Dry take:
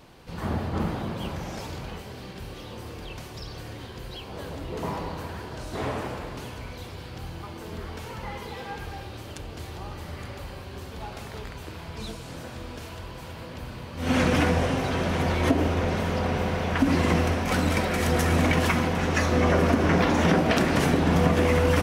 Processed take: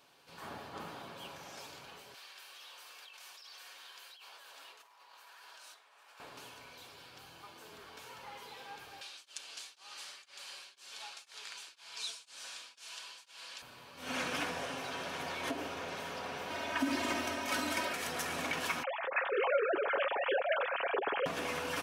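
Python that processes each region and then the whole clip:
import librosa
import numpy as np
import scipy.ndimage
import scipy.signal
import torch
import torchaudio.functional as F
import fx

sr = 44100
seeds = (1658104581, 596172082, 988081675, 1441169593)

y = fx.chain(x, sr, fx.highpass(hz=1000.0, slope=12),
    fx.over_compress(threshold_db=-47.0, ratio=-1.0), at=(2.14, 6.2))
y = fx.chain(y, sr, fx.weighting(curve='ITU-R 468'),
    fx.tremolo_abs(hz=2.0), at=(9.01, 13.62))
y = fx.chain(y, sr, fx.highpass(hz=100.0, slope=24),
    fx.low_shelf(hz=130.0, db=11.0),
    fx.comb(ms=3.2, depth=1.0), at=(16.5, 17.93))
y = fx.chain(y, sr, fx.sine_speech(),
    fx.low_shelf(hz=280.0, db=10.0), at=(18.83, 21.26))
y = fx.highpass(y, sr, hz=1200.0, slope=6)
y = fx.notch(y, sr, hz=2000.0, q=11.0)
y = y + 0.31 * np.pad(y, (int(7.2 * sr / 1000.0), 0))[:len(y)]
y = y * librosa.db_to_amplitude(-7.0)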